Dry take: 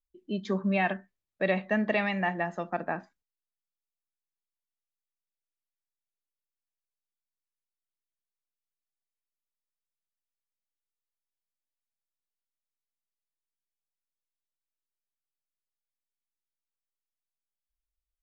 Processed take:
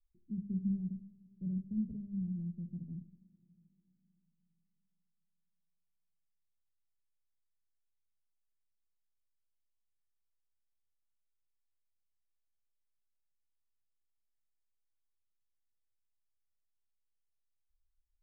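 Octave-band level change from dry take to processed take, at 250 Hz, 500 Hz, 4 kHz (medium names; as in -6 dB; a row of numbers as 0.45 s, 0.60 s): -5.0 dB, under -30 dB, under -35 dB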